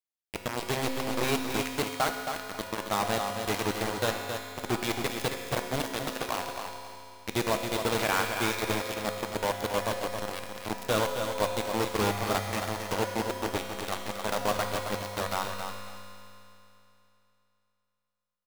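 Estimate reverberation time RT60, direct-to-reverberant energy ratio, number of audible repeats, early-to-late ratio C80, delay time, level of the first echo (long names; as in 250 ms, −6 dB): 3.0 s, 1.5 dB, 2, 3.0 dB, 271 ms, −7.0 dB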